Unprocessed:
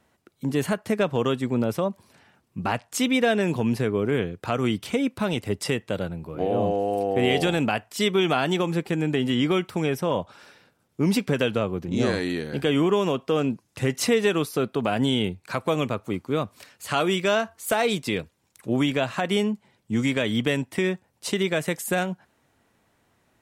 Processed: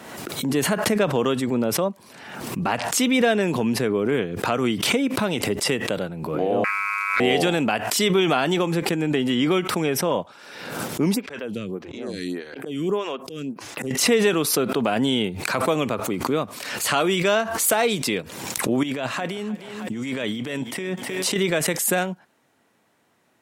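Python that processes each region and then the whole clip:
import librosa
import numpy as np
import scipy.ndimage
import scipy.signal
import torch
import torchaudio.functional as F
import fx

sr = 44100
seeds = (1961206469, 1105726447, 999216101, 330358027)

y = fx.chain(x, sr, fx.delta_mod(bps=64000, step_db=-39.0),
    fx.ring_mod(carrier_hz=1800.0), at=(6.64, 7.2))
y = fx.chain(y, sr, fx.peak_eq(hz=790.0, db=-4.0, octaves=2.1),
    fx.auto_swell(attack_ms=330.0),
    fx.stagger_phaser(hz=1.7), at=(11.14, 13.91))
y = fx.chain(y, sr, fx.over_compress(threshold_db=-29.0, ratio=-1.0),
    fx.echo_thinned(ms=312, feedback_pct=40, hz=210.0, wet_db=-17.5), at=(18.83, 21.36))
y = scipy.signal.sosfilt(scipy.signal.butter(2, 170.0, 'highpass', fs=sr, output='sos'), y)
y = fx.pre_swell(y, sr, db_per_s=44.0)
y = y * 10.0 ** (2.0 / 20.0)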